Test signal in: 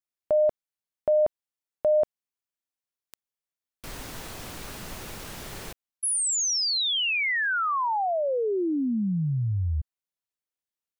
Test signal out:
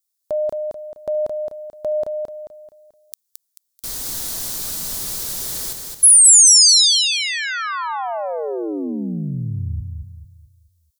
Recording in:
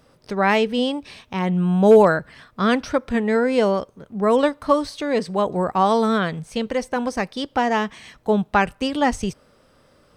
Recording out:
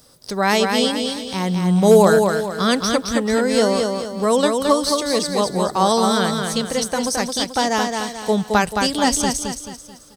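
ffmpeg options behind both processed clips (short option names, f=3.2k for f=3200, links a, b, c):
-filter_complex "[0:a]aexciter=amount=6.9:drive=1.6:freq=3.7k,asplit=2[a][b];[b]aecho=0:1:218|436|654|872|1090:0.596|0.238|0.0953|0.0381|0.0152[c];[a][c]amix=inputs=2:normalize=0"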